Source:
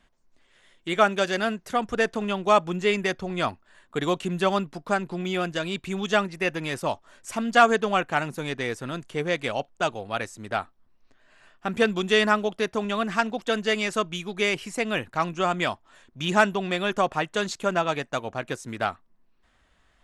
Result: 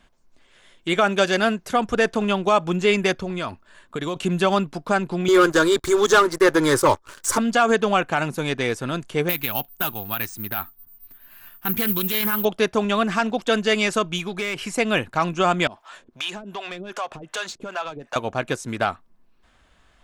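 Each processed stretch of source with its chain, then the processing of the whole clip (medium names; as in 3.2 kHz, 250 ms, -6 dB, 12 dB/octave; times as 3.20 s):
3.15–4.16 s: band-stop 770 Hz, Q 8.1 + compression 4:1, threshold -30 dBFS
5.28–7.38 s: static phaser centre 710 Hz, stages 6 + waveshaping leveller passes 3 + tape noise reduction on one side only encoder only
9.29–12.45 s: peaking EQ 530 Hz -12.5 dB 0.81 oct + careless resampling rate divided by 3×, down filtered, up zero stuff + loudspeaker Doppler distortion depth 0.18 ms
14.18–14.71 s: compression, threshold -29 dBFS + dynamic bell 1.6 kHz, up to +5 dB, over -46 dBFS, Q 0.96 + overload inside the chain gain 26 dB
15.67–18.16 s: compression 8:1, threshold -35 dBFS + overdrive pedal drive 17 dB, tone 6.4 kHz, clips at -19.5 dBFS + harmonic tremolo 2.6 Hz, depth 100%, crossover 460 Hz
whole clip: band-stop 1.9 kHz, Q 16; peak limiter -14.5 dBFS; trim +6 dB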